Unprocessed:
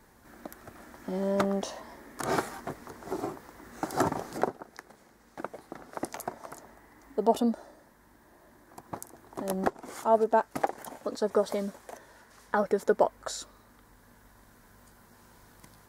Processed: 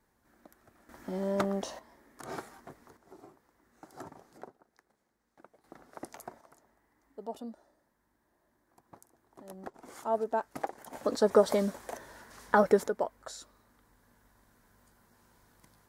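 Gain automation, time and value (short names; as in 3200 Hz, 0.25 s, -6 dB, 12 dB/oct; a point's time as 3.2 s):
-14 dB
from 0.89 s -3 dB
from 1.79 s -12 dB
from 2.97 s -19.5 dB
from 5.64 s -9 dB
from 6.41 s -16 dB
from 9.74 s -7 dB
from 10.93 s +3.5 dB
from 12.88 s -8 dB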